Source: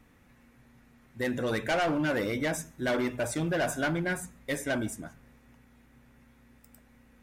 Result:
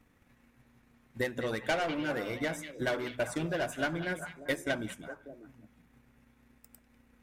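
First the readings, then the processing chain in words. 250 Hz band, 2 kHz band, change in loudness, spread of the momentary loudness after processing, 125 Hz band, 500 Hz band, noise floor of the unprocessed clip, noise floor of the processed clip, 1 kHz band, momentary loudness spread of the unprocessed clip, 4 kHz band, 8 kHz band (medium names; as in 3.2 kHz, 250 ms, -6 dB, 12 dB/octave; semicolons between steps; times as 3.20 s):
-5.0 dB, -2.5 dB, -3.5 dB, 14 LU, -5.0 dB, -3.0 dB, -61 dBFS, -67 dBFS, -3.5 dB, 8 LU, -1.5 dB, -7.5 dB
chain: hum notches 50/100/150/200/250 Hz; transient shaper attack +8 dB, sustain -5 dB; repeats whose band climbs or falls 197 ms, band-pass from 2.9 kHz, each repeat -1.4 oct, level -5 dB; trim -5.5 dB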